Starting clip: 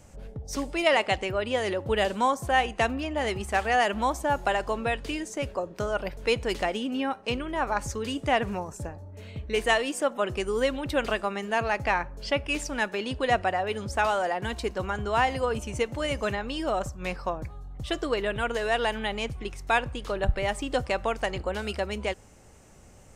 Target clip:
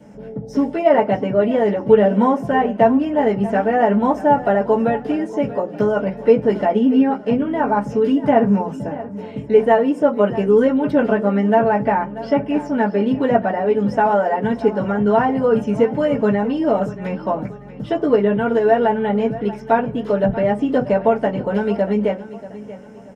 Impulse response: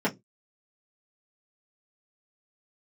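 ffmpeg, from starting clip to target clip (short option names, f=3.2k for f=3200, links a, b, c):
-filter_complex "[0:a]acrossover=split=1400[a][b];[b]acompressor=threshold=-42dB:ratio=6[c];[a][c]amix=inputs=2:normalize=0,aecho=1:1:635|1270|1905:0.158|0.0602|0.0229[d];[1:a]atrim=start_sample=2205[e];[d][e]afir=irnorm=-1:irlink=0,volume=-4dB"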